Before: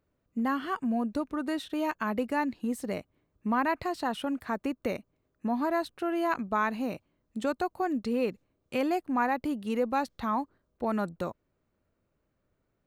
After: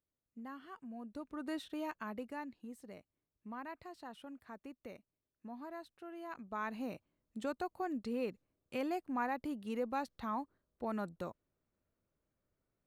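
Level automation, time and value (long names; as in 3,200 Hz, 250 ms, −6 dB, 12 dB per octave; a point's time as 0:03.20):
0:00.94 −19 dB
0:01.54 −8 dB
0:02.79 −18.5 dB
0:06.26 −18.5 dB
0:06.78 −9 dB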